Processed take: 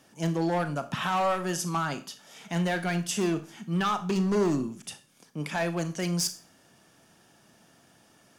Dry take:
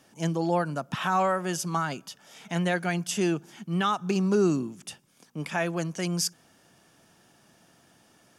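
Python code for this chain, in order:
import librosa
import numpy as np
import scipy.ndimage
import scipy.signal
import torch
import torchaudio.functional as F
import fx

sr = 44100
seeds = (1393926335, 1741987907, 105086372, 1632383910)

y = np.clip(10.0 ** (22.0 / 20.0) * x, -1.0, 1.0) / 10.0 ** (22.0 / 20.0)
y = fx.rev_schroeder(y, sr, rt60_s=0.36, comb_ms=27, drr_db=10.0)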